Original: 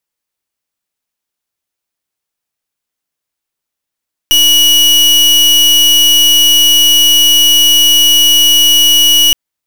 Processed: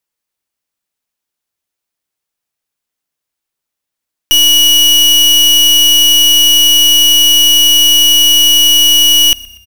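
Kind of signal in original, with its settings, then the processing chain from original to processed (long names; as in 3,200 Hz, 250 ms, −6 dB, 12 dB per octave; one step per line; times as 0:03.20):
pulse wave 2,920 Hz, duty 37% −7 dBFS 5.02 s
echo with shifted repeats 121 ms, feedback 49%, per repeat −31 Hz, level −23.5 dB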